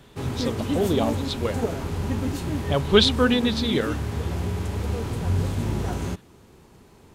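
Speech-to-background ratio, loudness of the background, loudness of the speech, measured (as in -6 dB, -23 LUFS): 4.0 dB, -28.0 LUFS, -24.0 LUFS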